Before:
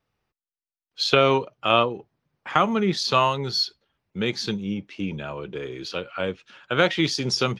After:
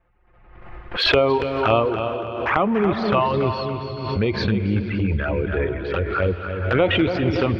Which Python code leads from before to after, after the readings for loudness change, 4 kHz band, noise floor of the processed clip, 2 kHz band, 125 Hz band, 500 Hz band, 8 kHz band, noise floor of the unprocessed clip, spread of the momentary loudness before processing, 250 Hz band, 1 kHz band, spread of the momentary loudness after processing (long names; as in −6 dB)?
+2.5 dB, −2.0 dB, −52 dBFS, +2.5 dB, +8.0 dB, +4.5 dB, below −15 dB, below −85 dBFS, 13 LU, +5.0 dB, +1.0 dB, 8 LU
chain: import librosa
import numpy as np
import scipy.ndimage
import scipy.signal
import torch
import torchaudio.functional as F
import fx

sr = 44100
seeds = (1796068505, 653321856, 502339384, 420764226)

p1 = fx.dereverb_blind(x, sr, rt60_s=0.74)
p2 = scipy.signal.sosfilt(scipy.signal.butter(4, 2200.0, 'lowpass', fs=sr, output='sos'), p1)
p3 = fx.low_shelf_res(p2, sr, hz=110.0, db=9.0, q=3.0)
p4 = fx.over_compress(p3, sr, threshold_db=-33.0, ratio=-1.0)
p5 = p3 + (p4 * 10.0 ** (-0.5 / 20.0))
p6 = fx.env_flanger(p5, sr, rest_ms=5.8, full_db=-19.5)
p7 = p6 + fx.echo_feedback(p6, sr, ms=283, feedback_pct=40, wet_db=-8.0, dry=0)
p8 = fx.rev_gated(p7, sr, seeds[0], gate_ms=490, shape='rising', drr_db=10.0)
p9 = fx.pre_swell(p8, sr, db_per_s=49.0)
y = p9 * 10.0 ** (4.0 / 20.0)